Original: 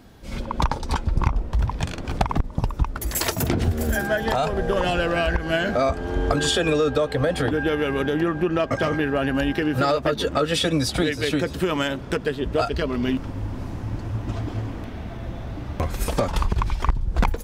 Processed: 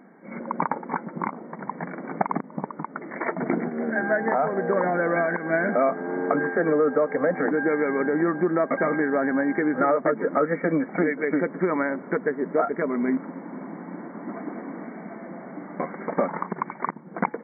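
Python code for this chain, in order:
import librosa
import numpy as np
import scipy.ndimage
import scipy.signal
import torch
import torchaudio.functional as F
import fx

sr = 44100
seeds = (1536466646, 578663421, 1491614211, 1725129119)

y = fx.brickwall_bandpass(x, sr, low_hz=160.0, high_hz=2300.0)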